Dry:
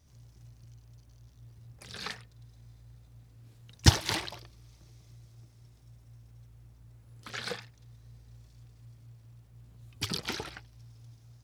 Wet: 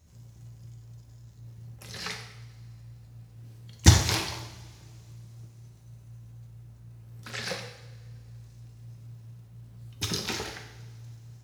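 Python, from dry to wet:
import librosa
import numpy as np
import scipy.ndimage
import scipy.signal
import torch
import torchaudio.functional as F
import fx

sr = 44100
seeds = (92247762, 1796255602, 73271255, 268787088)

y = fx.formant_shift(x, sr, semitones=2)
y = fx.rev_double_slope(y, sr, seeds[0], early_s=0.75, late_s=2.2, knee_db=-17, drr_db=2.5)
y = y * 10.0 ** (1.5 / 20.0)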